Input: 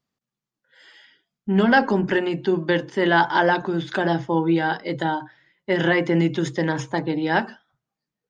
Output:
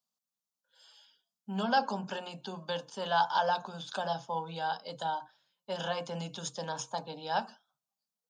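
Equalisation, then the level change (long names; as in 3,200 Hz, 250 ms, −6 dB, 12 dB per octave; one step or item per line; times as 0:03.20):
high-pass filter 190 Hz 24 dB per octave
high-shelf EQ 2,400 Hz +10 dB
phaser with its sweep stopped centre 820 Hz, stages 4
−8.5 dB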